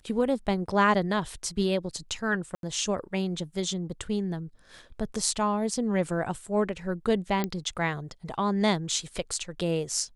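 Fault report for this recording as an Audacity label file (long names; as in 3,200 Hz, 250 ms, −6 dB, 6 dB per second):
2.550000	2.630000	drop-out 82 ms
7.440000	7.440000	click −14 dBFS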